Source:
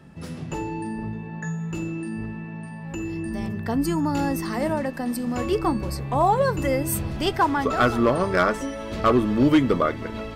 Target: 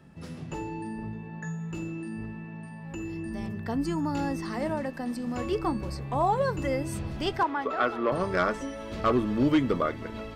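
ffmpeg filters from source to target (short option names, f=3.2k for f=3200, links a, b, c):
-filter_complex "[0:a]asettb=1/sr,asplit=3[a][b][c];[a]atrim=end=7.434[d];[b]atrim=start=7.43:end=8.12,asetpts=PTS-STARTPTS,afade=t=in:d=0.004:c=qsin,afade=t=out:st=0.686:d=0.004:c=qsin,acrossover=split=270 3800:gain=0.126 1 0.141[e][f][g];[e][f][g]amix=inputs=3:normalize=0[h];[c]atrim=start=8.116[i];[d][h]acrossfade=d=0.004:c1=hsin:c2=qsin[j];[j][i]acrossfade=d=0.004:c1=qsin:c2=hsin,acrossover=split=7800[k][l];[l]acompressor=threshold=-57dB:ratio=4:attack=1:release=60[m];[k][m]amix=inputs=2:normalize=0,volume=-5.5dB"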